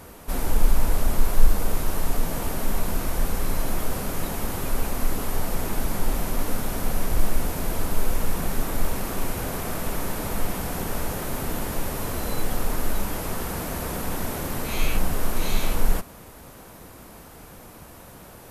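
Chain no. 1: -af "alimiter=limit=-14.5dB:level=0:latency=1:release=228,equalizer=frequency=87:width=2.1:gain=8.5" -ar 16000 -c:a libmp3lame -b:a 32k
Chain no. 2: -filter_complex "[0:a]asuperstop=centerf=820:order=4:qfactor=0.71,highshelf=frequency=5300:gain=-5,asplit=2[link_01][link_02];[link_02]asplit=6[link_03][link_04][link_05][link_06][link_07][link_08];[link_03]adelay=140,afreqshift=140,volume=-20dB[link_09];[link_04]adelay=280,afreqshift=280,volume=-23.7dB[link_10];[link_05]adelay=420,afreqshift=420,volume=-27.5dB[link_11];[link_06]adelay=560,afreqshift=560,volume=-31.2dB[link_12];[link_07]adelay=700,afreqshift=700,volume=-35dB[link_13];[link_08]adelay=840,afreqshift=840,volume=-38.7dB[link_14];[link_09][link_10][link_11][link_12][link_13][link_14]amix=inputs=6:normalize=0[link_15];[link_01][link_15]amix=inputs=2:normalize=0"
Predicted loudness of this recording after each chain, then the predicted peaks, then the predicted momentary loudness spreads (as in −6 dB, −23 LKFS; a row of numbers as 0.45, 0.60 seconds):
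−31.0, −30.5 LKFS; −13.5, −2.5 dBFS; 15, 16 LU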